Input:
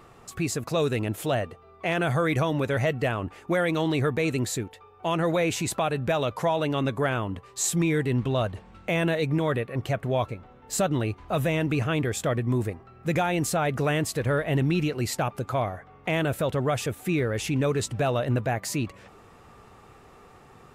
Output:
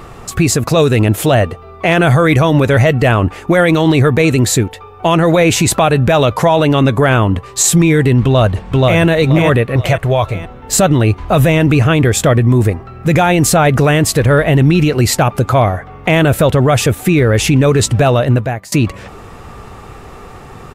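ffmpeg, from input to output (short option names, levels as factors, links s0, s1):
-filter_complex "[0:a]asplit=2[s0][s1];[s1]afade=t=in:st=8.23:d=0.01,afade=t=out:st=9.01:d=0.01,aecho=0:1:480|960|1440|1920|2400:0.794328|0.278015|0.0973052|0.0340568|0.0119199[s2];[s0][s2]amix=inputs=2:normalize=0,asettb=1/sr,asplit=3[s3][s4][s5];[s3]atrim=end=9.764[s6];[s4]atrim=start=9.76:end=10.35,asetpts=PTS-STARTPTS,afade=t=in:d=0.004:c=qsin,afade=t=out:st=0.586:d=0.004:c=qsin,equalizer=f=240:w=1.2:g=-11[s7];[s5]atrim=start=10.346[s8];[s6][s7]acrossfade=d=0.004:c1=hsin:c2=qsin[s9];[s9][s8]acrossfade=d=0.004:c1=qsin:c2=hsin,asplit=2[s10][s11];[s10]atrim=end=18.72,asetpts=PTS-STARTPTS,afade=t=out:st=17.99:d=0.73:silence=0.0668344[s12];[s11]atrim=start=18.72,asetpts=PTS-STARTPTS,afade=t=in:d=0.004:c=hsin:silence=0.0668344[s13];[s12][s13]concat=n=2:v=0:a=1,lowshelf=f=80:g=9.5,alimiter=level_in=7.5:limit=0.891:release=50:level=0:latency=1,volume=0.891"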